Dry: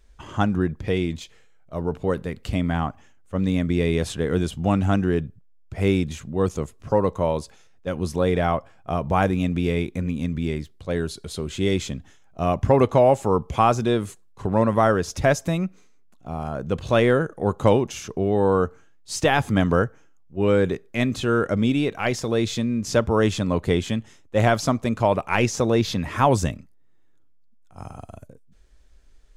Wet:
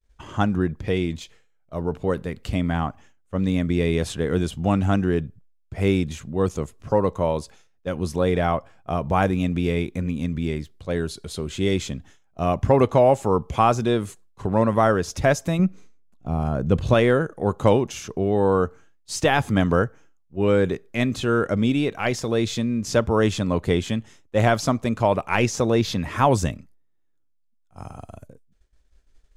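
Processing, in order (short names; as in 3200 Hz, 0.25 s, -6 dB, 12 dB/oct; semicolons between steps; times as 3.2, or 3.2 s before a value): expander -45 dBFS; 15.59–16.94 low shelf 340 Hz +9 dB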